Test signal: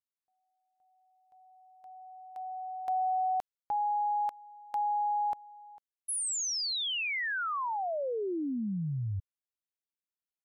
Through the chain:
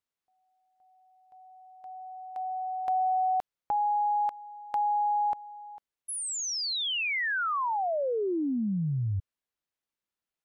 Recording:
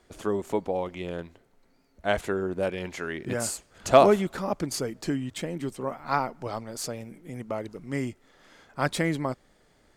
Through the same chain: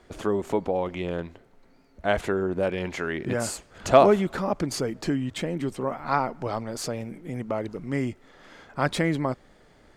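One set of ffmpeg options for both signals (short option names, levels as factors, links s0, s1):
-filter_complex "[0:a]highshelf=f=5300:g=-9.5,asplit=2[s0][s1];[s1]acompressor=threshold=0.0126:ratio=6:attack=8.2:release=43:knee=6:detection=peak,volume=1.19[s2];[s0][s2]amix=inputs=2:normalize=0"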